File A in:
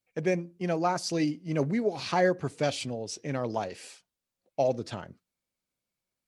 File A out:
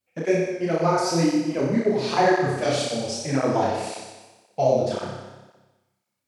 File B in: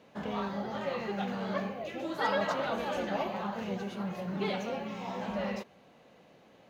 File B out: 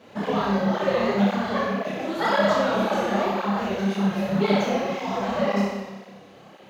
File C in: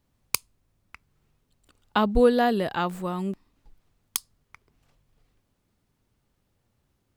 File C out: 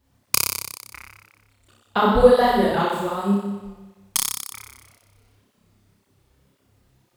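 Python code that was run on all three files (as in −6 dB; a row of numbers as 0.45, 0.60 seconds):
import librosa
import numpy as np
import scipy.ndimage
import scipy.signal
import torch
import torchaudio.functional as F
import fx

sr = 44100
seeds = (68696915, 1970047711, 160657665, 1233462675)

p1 = fx.dynamic_eq(x, sr, hz=2700.0, q=2.9, threshold_db=-51.0, ratio=4.0, max_db=-4)
p2 = fx.rider(p1, sr, range_db=10, speed_s=2.0)
p3 = p2 + fx.room_flutter(p2, sr, wall_m=5.2, rt60_s=1.2, dry=0)
p4 = fx.flanger_cancel(p3, sr, hz=1.9, depth_ms=7.2)
y = p4 * 10.0 ** (-24 / 20.0) / np.sqrt(np.mean(np.square(p4)))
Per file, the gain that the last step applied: +5.0, +8.5, +2.5 decibels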